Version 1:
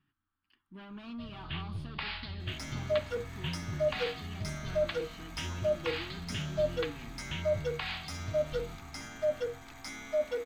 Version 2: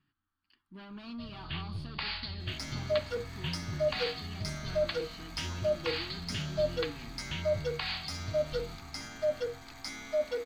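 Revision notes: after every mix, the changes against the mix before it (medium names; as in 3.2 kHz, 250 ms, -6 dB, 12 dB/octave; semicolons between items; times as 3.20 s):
master: add peaking EQ 4.5 kHz +11.5 dB 0.27 oct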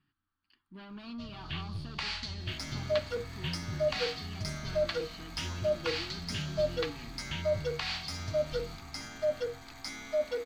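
first sound: remove steep low-pass 4.9 kHz 96 dB/octave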